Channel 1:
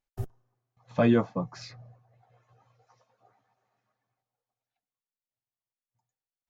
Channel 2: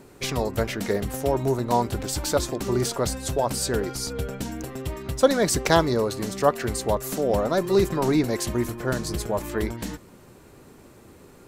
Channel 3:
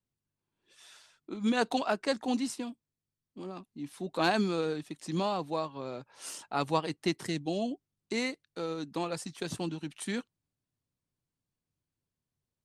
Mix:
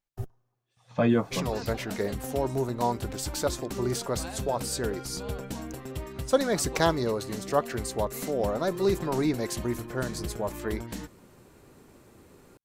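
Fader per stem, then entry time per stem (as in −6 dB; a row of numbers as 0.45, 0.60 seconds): −1.0, −5.0, −14.5 decibels; 0.00, 1.10, 0.00 seconds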